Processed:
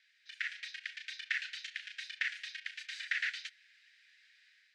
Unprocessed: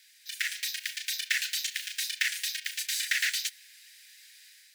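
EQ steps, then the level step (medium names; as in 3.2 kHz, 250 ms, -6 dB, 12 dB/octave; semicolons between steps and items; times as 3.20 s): tape spacing loss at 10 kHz 37 dB; +2.0 dB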